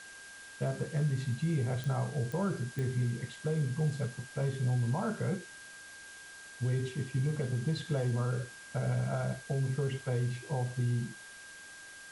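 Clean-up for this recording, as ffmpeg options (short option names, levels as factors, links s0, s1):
-af "adeclick=t=4,bandreject=f=1600:w=30,afwtdn=0.0028"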